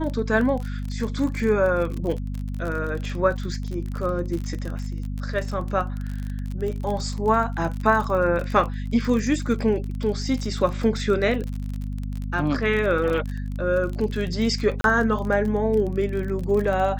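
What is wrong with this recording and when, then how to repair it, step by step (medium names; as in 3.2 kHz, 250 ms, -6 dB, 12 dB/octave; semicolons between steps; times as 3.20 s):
crackle 33 per s -28 dBFS
hum 50 Hz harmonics 5 -29 dBFS
14.81–14.84 s: dropout 32 ms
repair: de-click; de-hum 50 Hz, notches 5; interpolate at 14.81 s, 32 ms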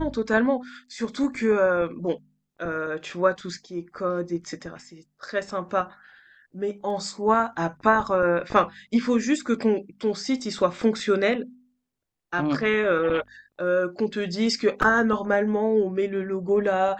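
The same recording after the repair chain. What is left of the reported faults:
nothing left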